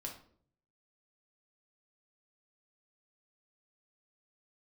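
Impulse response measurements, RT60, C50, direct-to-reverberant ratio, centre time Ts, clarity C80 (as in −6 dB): 0.55 s, 7.5 dB, −0.5 dB, 21 ms, 12.5 dB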